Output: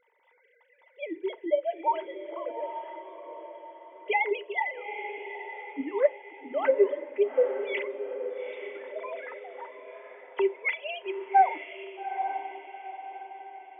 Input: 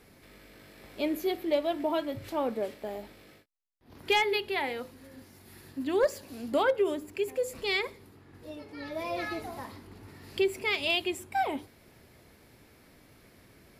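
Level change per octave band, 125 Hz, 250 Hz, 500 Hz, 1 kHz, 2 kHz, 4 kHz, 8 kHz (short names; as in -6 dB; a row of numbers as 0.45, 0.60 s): under -25 dB, -4.5 dB, +2.0 dB, +6.0 dB, 0.0 dB, -11.5 dB, under -30 dB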